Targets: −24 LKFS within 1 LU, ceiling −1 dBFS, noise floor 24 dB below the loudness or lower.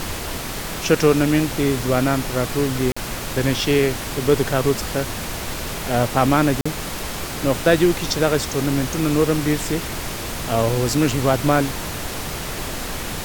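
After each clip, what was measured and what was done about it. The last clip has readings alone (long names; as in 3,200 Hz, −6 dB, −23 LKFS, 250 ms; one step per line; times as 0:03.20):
number of dropouts 2; longest dropout 45 ms; background noise floor −29 dBFS; target noise floor −45 dBFS; integrated loudness −21.0 LKFS; sample peak −2.0 dBFS; target loudness −24.0 LKFS
→ repair the gap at 0:02.92/0:06.61, 45 ms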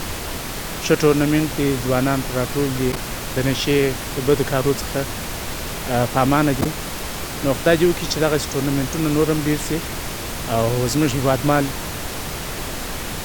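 number of dropouts 0; background noise floor −29 dBFS; target noise floor −45 dBFS
→ noise reduction from a noise print 16 dB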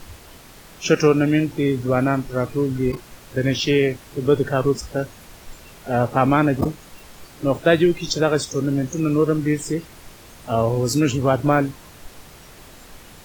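background noise floor −45 dBFS; integrated loudness −20.5 LKFS; sample peak −2.5 dBFS; target loudness −24.0 LKFS
→ level −3.5 dB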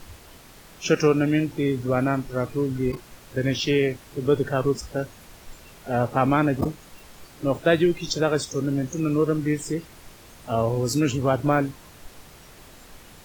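integrated loudness −24.0 LKFS; sample peak −6.0 dBFS; background noise floor −48 dBFS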